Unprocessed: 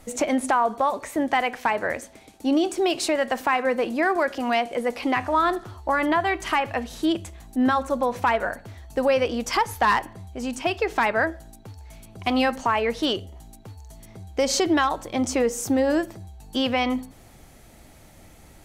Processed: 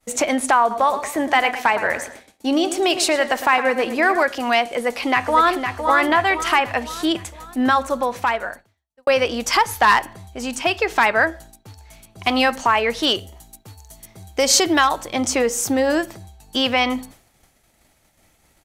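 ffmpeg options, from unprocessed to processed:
ffmpeg -i in.wav -filter_complex "[0:a]asettb=1/sr,asplit=3[link_01][link_02][link_03];[link_01]atrim=end=0.604[link_04];[link_02]atrim=start=0.6:end=4.23,asetpts=PTS-STARTPTS,afade=type=in:duration=0.004:curve=qsin,afade=type=out:start_time=3.626:duration=0.004:curve=qsin,asplit=2[link_05][link_06];[link_06]adelay=110,lowpass=frequency=3100:poles=1,volume=-10.5dB,asplit=2[link_07][link_08];[link_08]adelay=110,lowpass=frequency=3100:poles=1,volume=0.42,asplit=2[link_09][link_10];[link_10]adelay=110,lowpass=frequency=3100:poles=1,volume=0.42,asplit=2[link_11][link_12];[link_12]adelay=110,lowpass=frequency=3100:poles=1,volume=0.42[link_13];[link_05][link_07][link_09][link_11][link_13]amix=inputs=5:normalize=0,atrim=end_sample=160083[link_14];[link_03]atrim=start=4.226[link_15];[link_04][link_14]acrossfade=duration=0.004:curve1=hsin:curve2=qsin[link_16];[link_16][link_15]acrossfade=duration=0.004:curve1=qsin:curve2=hsin,asplit=2[link_17][link_18];[link_18]afade=type=in:start_time=4.76:duration=0.01,afade=type=out:start_time=5.74:duration=0.01,aecho=0:1:510|1020|1530|2040|2550|3060:0.473151|0.236576|0.118288|0.0591439|0.029572|0.014786[link_19];[link_17][link_19]amix=inputs=2:normalize=0,asettb=1/sr,asplit=3[link_20][link_21][link_22];[link_20]atrim=end=13.074[link_23];[link_21]atrim=start=13.07:end=15.01,asetpts=PTS-STARTPTS,afade=type=in:duration=0.004:curve=qsin,afade=type=out:start_time=1.936:duration=0.004:curve=qsin,highshelf=frequency=8600:gain=7.5[link_24];[link_22]atrim=start=15.006[link_25];[link_23][link_24]acrossfade=duration=0.004:curve1=hsin:curve2=qsin[link_26];[link_26][link_25]acrossfade=duration=0.004:curve1=qsin:curve2=hsin,asplit=2[link_27][link_28];[link_27]atrim=end=9.07,asetpts=PTS-STARTPTS,afade=type=out:start_time=7.81:duration=1.26[link_29];[link_28]atrim=start=9.07,asetpts=PTS-STARTPTS,afade=type=in:duration=0.004:curve=hsin[link_30];[link_29][link_30]concat=n=2:v=0:a=1,agate=range=-33dB:threshold=-39dB:ratio=3:detection=peak,tiltshelf=frequency=690:gain=-4,volume=4dB" out.wav

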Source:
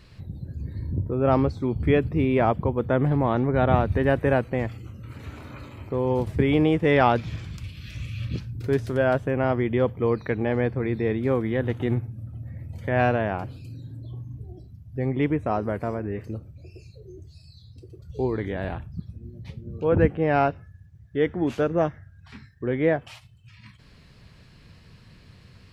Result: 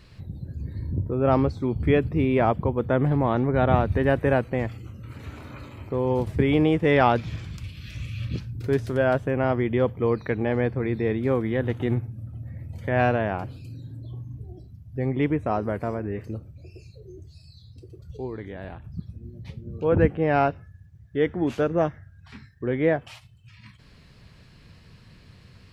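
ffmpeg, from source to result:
ffmpeg -i in.wav -filter_complex "[0:a]asplit=3[link_01][link_02][link_03];[link_01]atrim=end=18.172[link_04];[link_02]atrim=start=18.168:end=18.842,asetpts=PTS-STARTPTS,volume=-7.5dB[link_05];[link_03]atrim=start=18.838[link_06];[link_04][link_05]acrossfade=duration=0.004:curve1=hsin:curve2=hsin[link_07];[link_07][link_06]acrossfade=duration=0.004:curve1=hsin:curve2=hsin" out.wav

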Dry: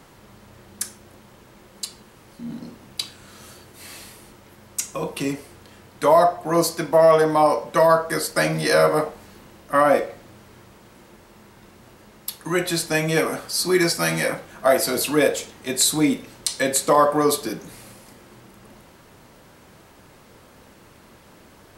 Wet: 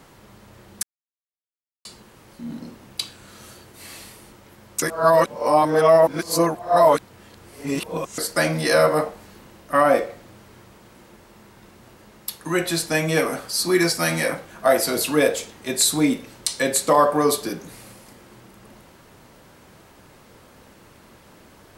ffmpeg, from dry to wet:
ffmpeg -i in.wav -filter_complex "[0:a]asplit=5[link_01][link_02][link_03][link_04][link_05];[link_01]atrim=end=0.83,asetpts=PTS-STARTPTS,afade=type=out:start_time=0.826:duration=0.004:curve=hsin[link_06];[link_02]atrim=start=0.83:end=1.85,asetpts=PTS-STARTPTS,volume=0[link_07];[link_03]atrim=start=1.85:end=4.822,asetpts=PTS-STARTPTS,afade=type=in:duration=0.004:curve=hsin[link_08];[link_04]atrim=start=4.818:end=8.182,asetpts=PTS-STARTPTS,areverse[link_09];[link_05]atrim=start=8.178[link_10];[link_06][link_07][link_08]concat=n=3:v=0:a=1[link_11];[link_11][link_09]acrossfade=duration=0.004:curve1=hsin:curve2=hsin[link_12];[link_12][link_10]acrossfade=duration=0.004:curve1=hsin:curve2=hsin" out.wav

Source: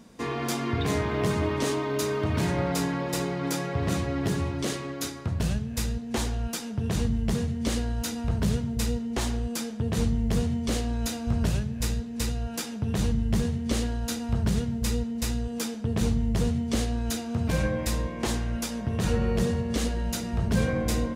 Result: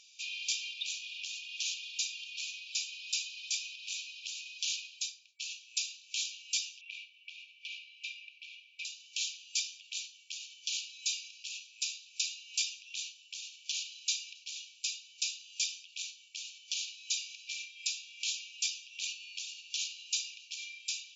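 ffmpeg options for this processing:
ffmpeg -i in.wav -filter_complex "[0:a]asettb=1/sr,asplit=3[link_01][link_02][link_03];[link_01]atrim=end=6.814[link_04];[link_02]atrim=start=6.81:end=8.85,asetpts=PTS-STARTPTS,afade=type=in:duration=0.004:curve=qsin,afade=type=out:start_time=2.036:duration=0.004:curve=qsin,lowpass=frequency=1900:width_type=q:width=8.7[link_05];[link_03]atrim=start=8.846[link_06];[link_04][link_05]acrossfade=duration=0.004:curve1=hsin:curve2=qsin[link_07];[link_07][link_06]acrossfade=duration=0.004:curve1=qsin:curve2=hsin,asettb=1/sr,asplit=3[link_08][link_09][link_10];[link_08]atrim=end=18.994[link_11];[link_09]atrim=start=18.99:end=19.67,asetpts=PTS-STARTPTS,afade=type=in:duration=0.004:curve=qsin,afade=type=out:start_time=0.676:duration=0.004:curve=qsin,lowshelf=frequency=61:gain=-12[link_12];[link_10]atrim=start=19.666[link_13];[link_11][link_12]acrossfade=duration=0.004:curve1=hsin:curve2=qsin[link_14];[link_14][link_13]acrossfade=duration=0.004:curve1=qsin:curve2=hsin,asplit=2[link_15][link_16];[link_15]atrim=end=5.39,asetpts=PTS-STARTPTS,afade=type=out:start_time=4.67:duration=0.72[link_17];[link_16]atrim=start=5.39,asetpts=PTS-STARTPTS,afade=type=in:duration=0.004:curve=hsin[link_18];[link_17][link_18]concat=n=2:v=0:a=1,acompressor=threshold=-27dB:ratio=6,afftfilt=real='re*between(b*sr/4096,2300,7400)':imag='im*between(b*sr/4096,2300,7400)':win_size=4096:overlap=0.75,volume=6dB" out.wav

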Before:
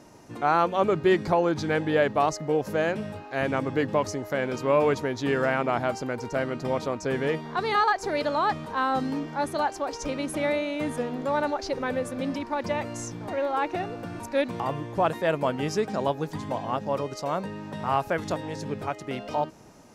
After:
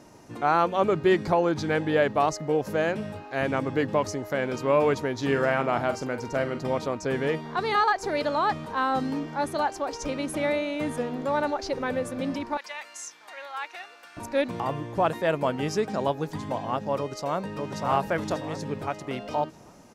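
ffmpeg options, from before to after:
ffmpeg -i in.wav -filter_complex "[0:a]asettb=1/sr,asplit=3[link_01][link_02][link_03];[link_01]atrim=end=5.144[link_04];[link_02]atrim=start=5.14:end=6.63,asetpts=PTS-STARTPTS,afade=type=in:duration=0.004:curve=qsin,afade=type=out:start_time=1.486:duration=0.004:curve=qsin,asplit=2[link_05][link_06];[link_06]adelay=44,volume=-10.5dB[link_07];[link_05][link_07]amix=inputs=2:normalize=0,atrim=end_sample=65709[link_08];[link_03]atrim=start=6.626[link_09];[link_04][link_08]acrossfade=duration=0.004:curve1=hsin:curve2=qsin[link_10];[link_10][link_09]acrossfade=duration=0.004:curve1=qsin:curve2=hsin,asettb=1/sr,asplit=3[link_11][link_12][link_13];[link_11]atrim=end=12.574[link_14];[link_12]atrim=start=12.57:end=14.17,asetpts=PTS-STARTPTS,afade=type=in:duration=0.004:curve=qsin,afade=type=out:start_time=1.596:duration=0.004:curve=qsin,highpass=1500[link_15];[link_13]atrim=start=14.166[link_16];[link_14][link_15]acrossfade=duration=0.004:curve1=hsin:curve2=qsin[link_17];[link_17][link_16]acrossfade=duration=0.004:curve1=qsin:curve2=hsin,asplit=2[link_18][link_19];[link_19]afade=type=in:start_time=16.97:duration=0.01,afade=type=out:start_time=17.81:duration=0.01,aecho=0:1:590|1180|1770|2360|2950:0.749894|0.262463|0.091862|0.0321517|0.0112531[link_20];[link_18][link_20]amix=inputs=2:normalize=0" out.wav

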